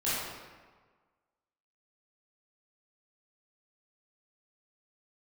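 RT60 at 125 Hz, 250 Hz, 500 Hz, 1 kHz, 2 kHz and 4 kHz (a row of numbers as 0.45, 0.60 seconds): 1.5, 1.4, 1.4, 1.5, 1.2, 0.95 seconds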